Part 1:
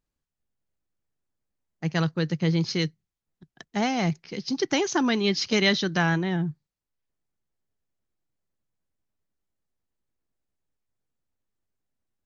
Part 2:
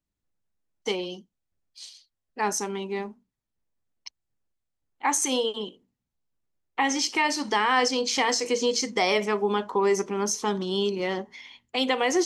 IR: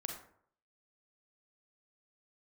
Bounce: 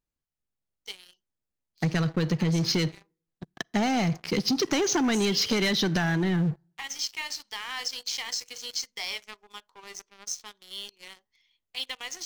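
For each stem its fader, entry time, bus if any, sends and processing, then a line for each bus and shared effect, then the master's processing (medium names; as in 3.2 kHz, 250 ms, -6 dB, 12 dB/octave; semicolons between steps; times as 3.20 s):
-0.5 dB, 0.00 s, send -16 dB, compression, threshold -25 dBFS, peak gain reduction 9 dB
-13.5 dB, 0.00 s, no send, band-pass filter 4.4 kHz, Q 1.1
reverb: on, RT60 0.60 s, pre-delay 32 ms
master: waveshaping leveller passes 3; compression 4:1, threshold -23 dBFS, peak gain reduction 5 dB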